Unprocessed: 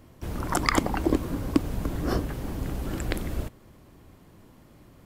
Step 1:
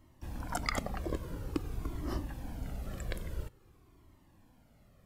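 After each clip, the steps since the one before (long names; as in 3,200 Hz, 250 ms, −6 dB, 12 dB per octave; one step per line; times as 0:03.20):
flanger whose copies keep moving one way falling 0.49 Hz
level −6 dB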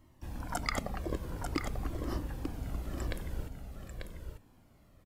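single-tap delay 892 ms −5.5 dB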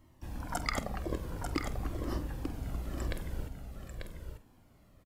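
double-tracking delay 48 ms −13 dB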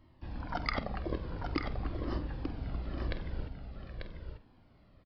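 downsampling to 11,025 Hz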